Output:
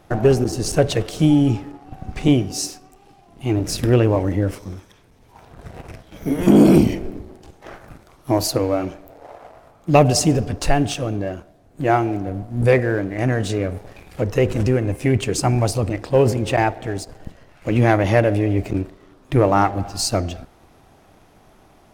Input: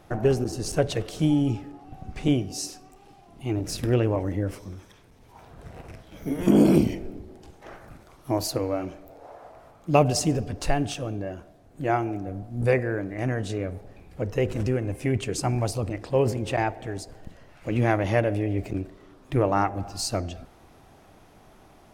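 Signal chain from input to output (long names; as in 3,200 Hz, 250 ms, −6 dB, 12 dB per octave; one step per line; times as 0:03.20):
leveller curve on the samples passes 1
0:13.40–0:14.52: one half of a high-frequency compander encoder only
level +3.5 dB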